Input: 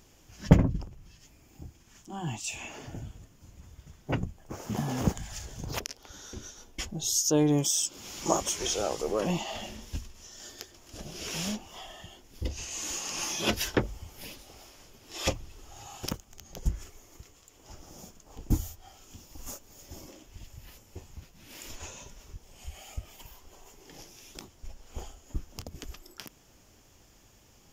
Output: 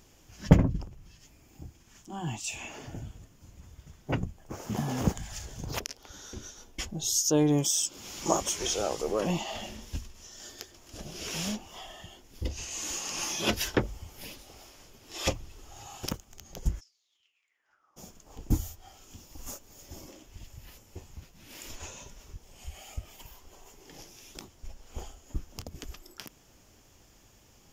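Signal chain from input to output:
0:16.79–0:17.96: resonant band-pass 5,600 Hz → 1,100 Hz, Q 10

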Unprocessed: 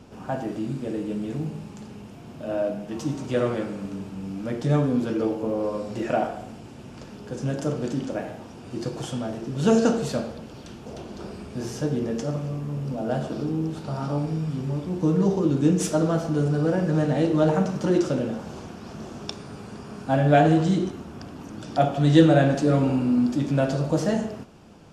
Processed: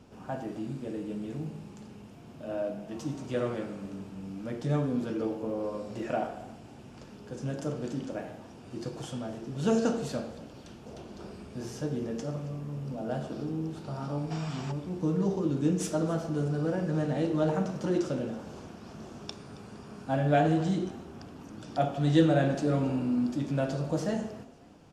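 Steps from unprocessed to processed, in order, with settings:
gain on a spectral selection 0:14.31–0:14.72, 610–8,300 Hz +12 dB
on a send: echo with shifted repeats 272 ms, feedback 36%, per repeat +38 Hz, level −21 dB
on the sum: level −7 dB

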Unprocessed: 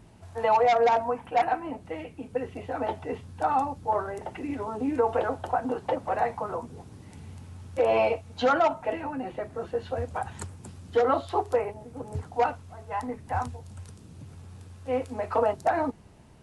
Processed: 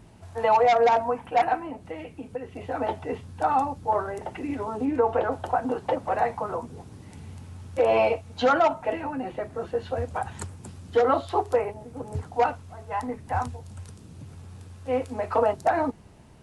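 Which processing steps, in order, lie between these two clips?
0:01.62–0:02.61: downward compressor 2 to 1, threshold −36 dBFS, peak gain reduction 7.5 dB
0:04.85–0:05.32: high-shelf EQ 4,800 Hz −9.5 dB
level +2 dB

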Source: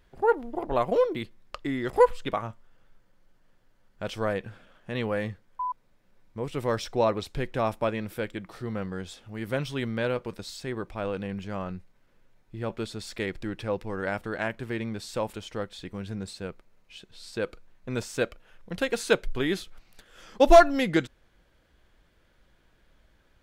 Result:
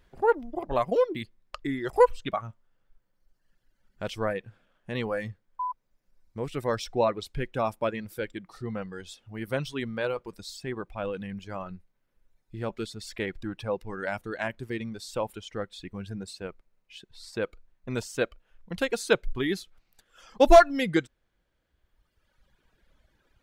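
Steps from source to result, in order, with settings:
reverb reduction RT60 1.8 s

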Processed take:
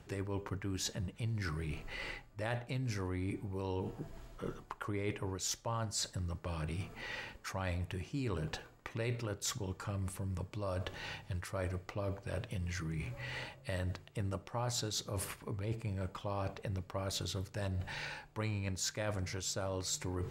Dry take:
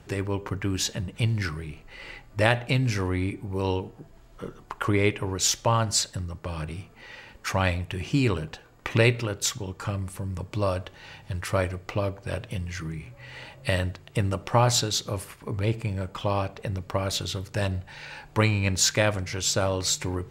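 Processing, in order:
dynamic equaliser 2,800 Hz, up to −5 dB, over −44 dBFS, Q 1.6
reversed playback
downward compressor 5 to 1, threshold −39 dBFS, peak gain reduction 20.5 dB
reversed playback
level +2 dB

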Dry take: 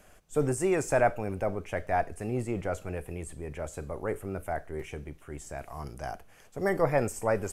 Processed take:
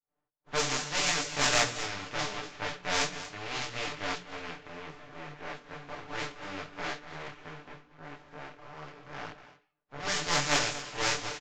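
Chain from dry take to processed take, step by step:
compressing power law on the bin magnitudes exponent 0.15
mains-hum notches 60/120/180/240/300/360/420/480 Hz
downward expander −47 dBFS
low-pass that shuts in the quiet parts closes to 980 Hz, open at −21.5 dBFS
comb filter 6.8 ms, depth 73%
downsampling to 16,000 Hz
in parallel at −10.5 dB: hard clipping −20 dBFS, distortion −14 dB
on the sum: tempo change 0.66×
on a send: single-tap delay 236 ms −14 dB
on the sum: noise reduction from a noise print of the clip's start 13 dB
micro pitch shift up and down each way 26 cents

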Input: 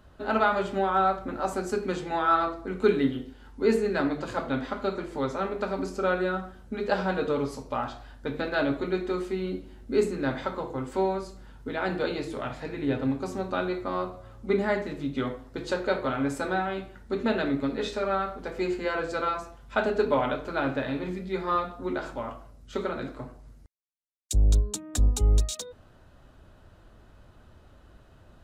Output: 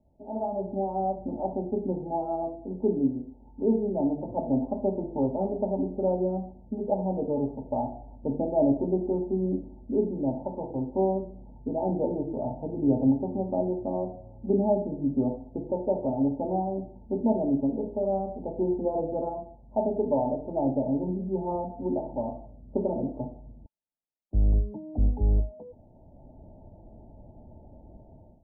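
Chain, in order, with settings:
automatic gain control gain up to 16.5 dB
Chebyshev low-pass with heavy ripple 910 Hz, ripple 6 dB
level −7.5 dB

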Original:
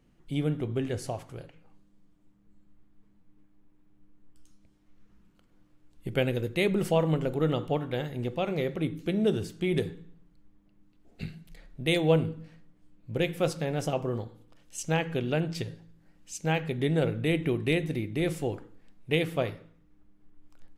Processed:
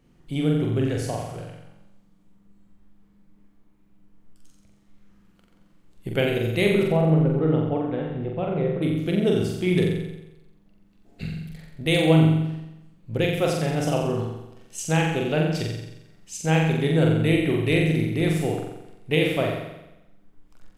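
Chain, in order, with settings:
0:06.83–0:08.82: head-to-tape spacing loss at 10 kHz 43 dB
flutter between parallel walls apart 7.6 metres, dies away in 0.93 s
level +3 dB

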